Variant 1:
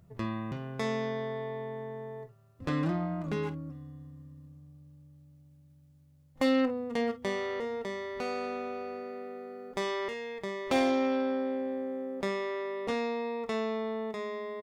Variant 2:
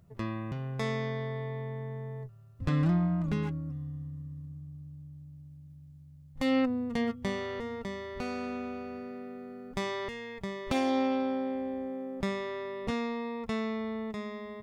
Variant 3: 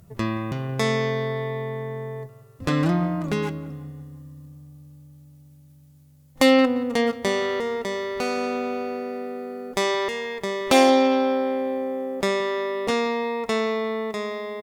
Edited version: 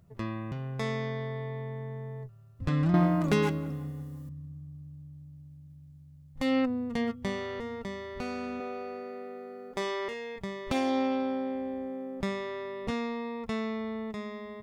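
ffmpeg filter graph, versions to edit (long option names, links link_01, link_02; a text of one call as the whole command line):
ffmpeg -i take0.wav -i take1.wav -i take2.wav -filter_complex "[1:a]asplit=3[link_01][link_02][link_03];[link_01]atrim=end=2.942[link_04];[2:a]atrim=start=2.938:end=4.292[link_05];[link_02]atrim=start=4.288:end=8.602[link_06];[0:a]atrim=start=8.598:end=10.362[link_07];[link_03]atrim=start=10.358[link_08];[link_04][link_05]acrossfade=duration=0.004:curve1=hsin:curve2=hsin[link_09];[link_09][link_06]acrossfade=duration=0.004:curve1=hsin:curve2=hsin[link_10];[link_10][link_07]acrossfade=duration=0.004:curve1=hsin:curve2=hsin[link_11];[link_11][link_08]acrossfade=duration=0.004:curve1=hsin:curve2=hsin" out.wav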